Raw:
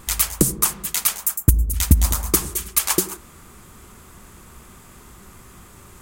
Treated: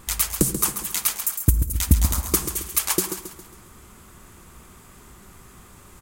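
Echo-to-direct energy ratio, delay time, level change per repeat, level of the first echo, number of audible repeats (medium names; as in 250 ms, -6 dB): -8.5 dB, 136 ms, -7.0 dB, -9.5 dB, 4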